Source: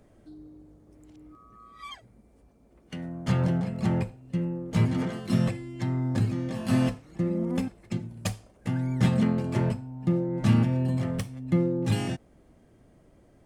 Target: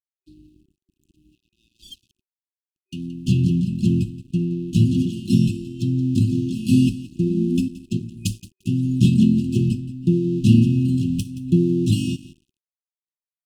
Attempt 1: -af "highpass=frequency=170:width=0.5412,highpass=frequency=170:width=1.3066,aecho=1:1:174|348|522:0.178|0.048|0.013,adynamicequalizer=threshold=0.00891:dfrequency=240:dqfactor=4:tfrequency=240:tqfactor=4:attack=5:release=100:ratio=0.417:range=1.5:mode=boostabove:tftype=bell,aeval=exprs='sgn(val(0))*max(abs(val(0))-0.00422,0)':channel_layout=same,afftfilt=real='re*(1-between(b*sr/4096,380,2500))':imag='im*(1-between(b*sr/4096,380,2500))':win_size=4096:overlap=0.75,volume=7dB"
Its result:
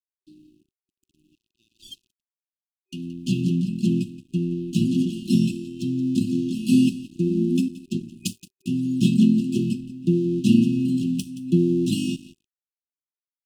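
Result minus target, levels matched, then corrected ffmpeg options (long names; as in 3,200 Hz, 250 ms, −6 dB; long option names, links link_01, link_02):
125 Hz band −4.5 dB
-af "aecho=1:1:174|348|522:0.178|0.048|0.013,adynamicequalizer=threshold=0.00891:dfrequency=240:dqfactor=4:tfrequency=240:tqfactor=4:attack=5:release=100:ratio=0.417:range=1.5:mode=boostabove:tftype=bell,aeval=exprs='sgn(val(0))*max(abs(val(0))-0.00422,0)':channel_layout=same,afftfilt=real='re*(1-between(b*sr/4096,380,2500))':imag='im*(1-between(b*sr/4096,380,2500))':win_size=4096:overlap=0.75,volume=7dB"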